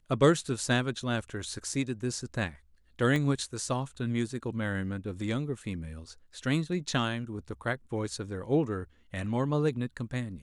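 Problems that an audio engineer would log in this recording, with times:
0:03.16: click −18 dBFS

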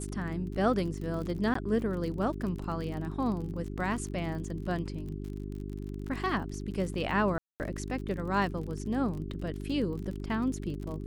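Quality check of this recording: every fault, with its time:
surface crackle 38 per second −37 dBFS
mains hum 50 Hz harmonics 8 −38 dBFS
0:01.54–0:01.55: drop-out 14 ms
0:07.38–0:07.60: drop-out 219 ms

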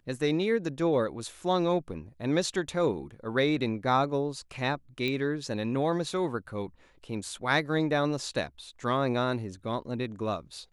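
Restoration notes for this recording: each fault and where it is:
0:05.08: click −19 dBFS

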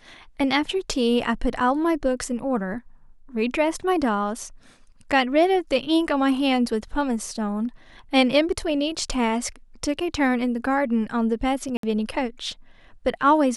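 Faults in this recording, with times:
0:11.77–0:11.83: drop-out 63 ms

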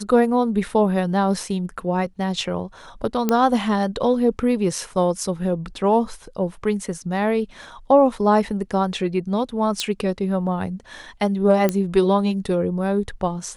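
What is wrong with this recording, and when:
0:03.29: click −6 dBFS
0:09.80: click −9 dBFS
0:11.69: click −7 dBFS

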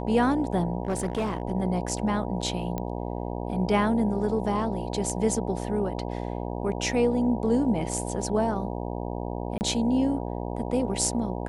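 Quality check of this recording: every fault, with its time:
mains buzz 60 Hz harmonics 16 −32 dBFS
0:00.83–0:01.42: clipping −22.5 dBFS
0:02.78: click −17 dBFS
0:09.58–0:09.61: drop-out 29 ms

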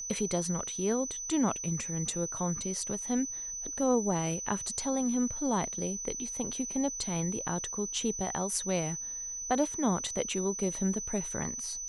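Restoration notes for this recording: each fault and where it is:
whistle 6,000 Hz −36 dBFS

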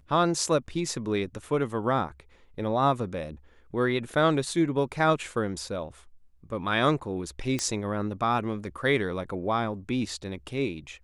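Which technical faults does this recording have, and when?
0:07.59: click −14 dBFS

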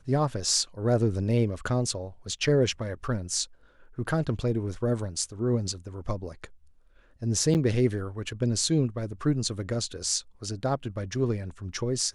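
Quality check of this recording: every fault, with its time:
0:07.54–0:07.55: drop-out 8.8 ms

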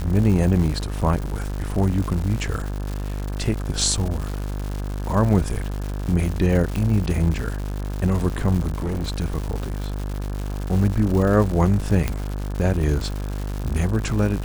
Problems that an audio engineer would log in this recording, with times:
mains buzz 50 Hz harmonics 35 −27 dBFS
surface crackle 250 per second −27 dBFS
0:06.76: click
0:08.78–0:09.17: clipping −21.5 dBFS
0:12.08: click −9 dBFS

